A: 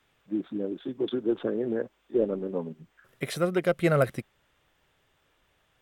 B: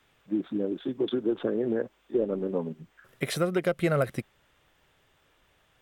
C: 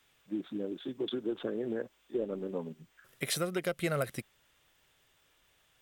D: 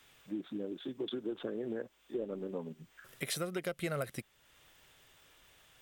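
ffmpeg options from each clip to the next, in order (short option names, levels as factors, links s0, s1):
-af "acompressor=threshold=0.0501:ratio=3,volume=1.41"
-af "highshelf=f=2700:g=11.5,volume=0.422"
-af "acompressor=threshold=0.00126:ratio=1.5,volume=2"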